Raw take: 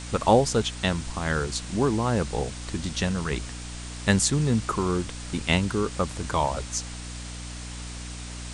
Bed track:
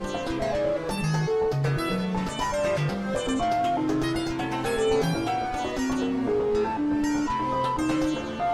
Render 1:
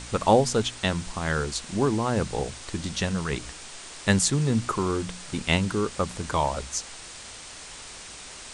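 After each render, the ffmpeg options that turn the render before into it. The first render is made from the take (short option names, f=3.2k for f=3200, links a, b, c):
-af "bandreject=f=60:t=h:w=4,bandreject=f=120:t=h:w=4,bandreject=f=180:t=h:w=4,bandreject=f=240:t=h:w=4,bandreject=f=300:t=h:w=4"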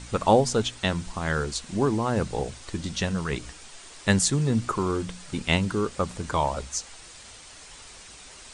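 -af "afftdn=nr=6:nf=-42"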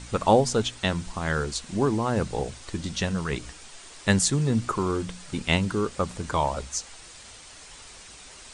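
-af anull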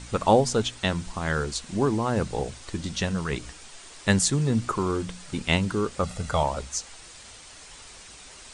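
-filter_complex "[0:a]asettb=1/sr,asplit=3[a][b][c];[a]atrim=end=6.034[d];[b]atrim=start=6.03:end=6.43,asetpts=PTS-STARTPTS,afade=t=in:d=0.004:c=qsin,afade=t=out:st=0.396:d=0.004:c=qsin,aecho=1:1:1.5:0.65,atrim=end_sample=17640[e];[c]atrim=start=6.426[f];[d][e]acrossfade=d=0.004:c1=hsin:c2=qsin[g];[g][f]acrossfade=d=0.004:c1=qsin:c2=hsin"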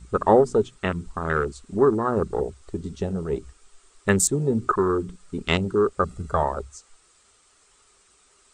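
-af "afwtdn=0.0398,equalizer=f=125:t=o:w=0.33:g=-6,equalizer=f=400:t=o:w=0.33:g=10,equalizer=f=1.25k:t=o:w=0.33:g=10,equalizer=f=8k:t=o:w=0.33:g=8"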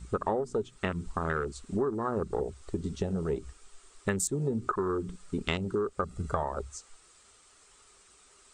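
-af "acompressor=threshold=-27dB:ratio=6"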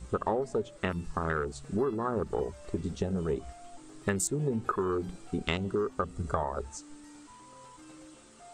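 -filter_complex "[1:a]volume=-26.5dB[a];[0:a][a]amix=inputs=2:normalize=0"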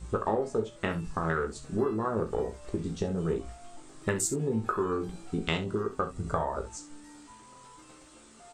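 -filter_complex "[0:a]asplit=2[a][b];[b]adelay=18,volume=-7dB[c];[a][c]amix=inputs=2:normalize=0,aecho=1:1:37|66:0.266|0.211"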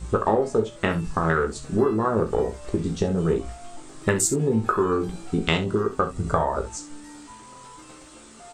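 -af "volume=7.5dB"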